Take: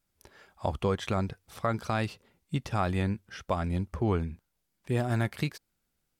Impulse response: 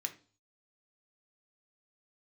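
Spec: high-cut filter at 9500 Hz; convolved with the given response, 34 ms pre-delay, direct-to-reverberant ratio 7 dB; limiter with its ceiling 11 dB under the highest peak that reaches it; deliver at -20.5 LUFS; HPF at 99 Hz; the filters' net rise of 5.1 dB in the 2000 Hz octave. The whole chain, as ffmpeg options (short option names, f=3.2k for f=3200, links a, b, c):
-filter_complex "[0:a]highpass=99,lowpass=9.5k,equalizer=f=2k:t=o:g=6.5,alimiter=limit=-23dB:level=0:latency=1,asplit=2[a][b];[1:a]atrim=start_sample=2205,adelay=34[c];[b][c]afir=irnorm=-1:irlink=0,volume=-6.5dB[d];[a][d]amix=inputs=2:normalize=0,volume=15.5dB"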